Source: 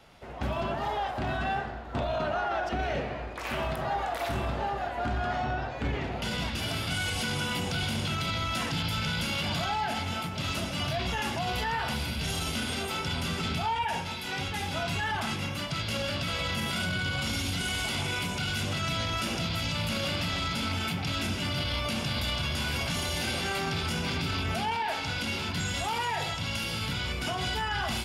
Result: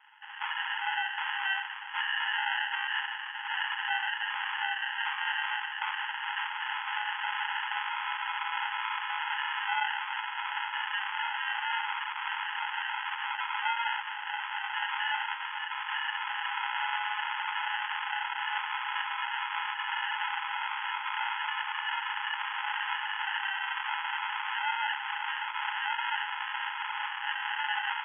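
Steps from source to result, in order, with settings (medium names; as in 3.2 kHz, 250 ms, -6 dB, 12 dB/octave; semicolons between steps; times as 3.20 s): echo that smears into a reverb 1170 ms, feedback 67%, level -11 dB; sample-and-hold 38×; brick-wall FIR band-pass 800–3400 Hz; trim +8 dB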